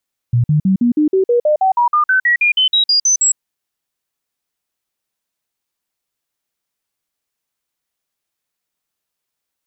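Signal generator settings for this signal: stepped sine 120 Hz up, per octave 3, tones 19, 0.11 s, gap 0.05 s -9.5 dBFS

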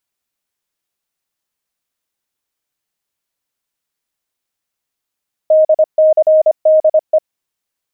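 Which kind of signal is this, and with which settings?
Morse "DCDE" 25 wpm 625 Hz -5.5 dBFS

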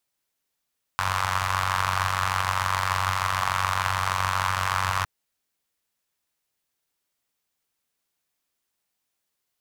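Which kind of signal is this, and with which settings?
four-cylinder engine model, steady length 4.06 s, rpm 2800, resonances 94/1100 Hz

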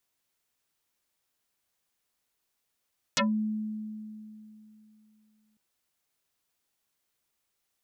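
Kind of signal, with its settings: FM tone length 2.40 s, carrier 215 Hz, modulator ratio 3.64, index 11, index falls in 0.15 s exponential, decay 3.04 s, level -21.5 dB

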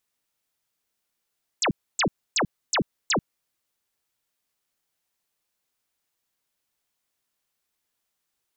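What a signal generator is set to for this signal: burst of laser zaps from 8400 Hz, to 130 Hz, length 0.09 s sine, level -19.5 dB, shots 5, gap 0.28 s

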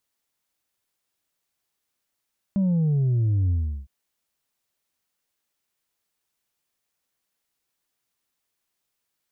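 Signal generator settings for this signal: sub drop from 200 Hz, over 1.31 s, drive 2.5 dB, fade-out 0.37 s, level -19 dB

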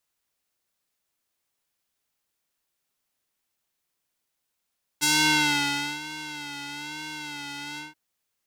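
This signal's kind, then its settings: synth patch with vibrato D3, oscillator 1 triangle, oscillator 2 square, interval +12 st, oscillator 2 level -1.5 dB, noise -17.5 dB, filter bandpass, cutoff 1900 Hz, Q 0.82, filter sustain 40%, attack 23 ms, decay 0.97 s, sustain -18 dB, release 0.16 s, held 2.77 s, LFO 1.1 Hz, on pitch 64 cents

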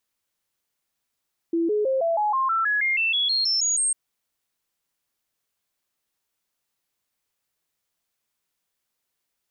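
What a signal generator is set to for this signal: stepped sine 334 Hz up, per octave 3, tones 15, 0.16 s, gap 0.00 s -19.5 dBFS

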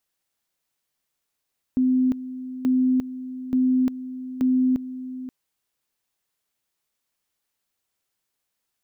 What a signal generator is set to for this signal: two-level tone 256 Hz -16.5 dBFS, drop 14 dB, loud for 0.35 s, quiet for 0.53 s, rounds 4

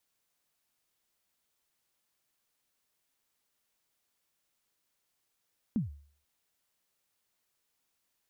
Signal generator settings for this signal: kick drum length 0.49 s, from 250 Hz, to 72 Hz, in 0.138 s, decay 0.49 s, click off, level -23.5 dB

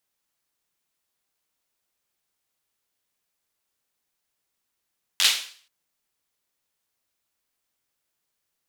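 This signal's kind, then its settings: hand clap length 0.48 s, bursts 5, apart 11 ms, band 3300 Hz, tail 0.48 s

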